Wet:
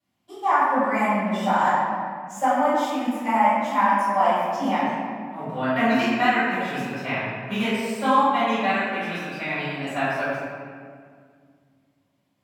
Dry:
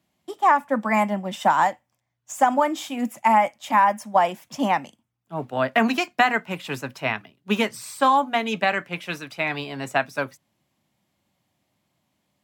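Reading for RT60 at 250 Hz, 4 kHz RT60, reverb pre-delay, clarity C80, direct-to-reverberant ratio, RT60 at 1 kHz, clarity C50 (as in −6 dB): 2.9 s, 1.2 s, 3 ms, −1.0 dB, −17.0 dB, 1.8 s, −3.0 dB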